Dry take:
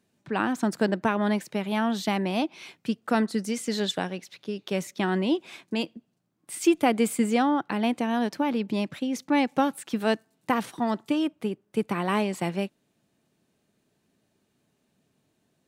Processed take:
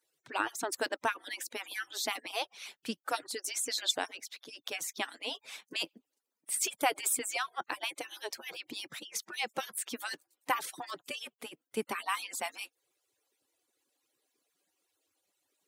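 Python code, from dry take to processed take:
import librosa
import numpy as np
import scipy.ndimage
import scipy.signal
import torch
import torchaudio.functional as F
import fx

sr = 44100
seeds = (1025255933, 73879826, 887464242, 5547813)

y = fx.hpss_only(x, sr, part='percussive')
y = fx.highpass(y, sr, hz=530.0, slope=6)
y = fx.high_shelf(y, sr, hz=5000.0, db=9.5)
y = F.gain(torch.from_numpy(y), -2.5).numpy()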